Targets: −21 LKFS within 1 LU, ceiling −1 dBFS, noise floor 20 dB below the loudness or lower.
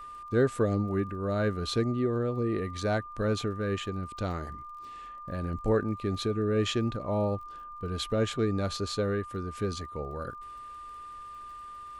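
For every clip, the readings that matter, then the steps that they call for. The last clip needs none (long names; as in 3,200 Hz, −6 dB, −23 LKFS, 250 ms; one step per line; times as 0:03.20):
crackle rate 29 per second; interfering tone 1,200 Hz; level of the tone −41 dBFS; integrated loudness −30.5 LKFS; sample peak −14.5 dBFS; target loudness −21.0 LKFS
→ click removal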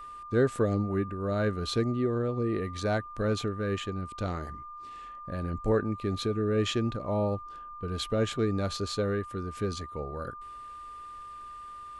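crackle rate 0 per second; interfering tone 1,200 Hz; level of the tone −41 dBFS
→ notch filter 1,200 Hz, Q 30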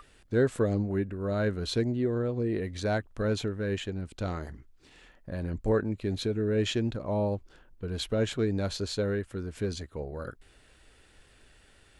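interfering tone none found; integrated loudness −31.0 LKFS; sample peak −14.5 dBFS; target loudness −21.0 LKFS
→ level +10 dB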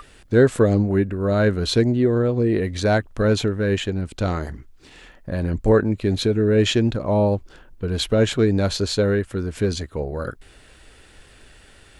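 integrated loudness −21.0 LKFS; sample peak −4.5 dBFS; background noise floor −50 dBFS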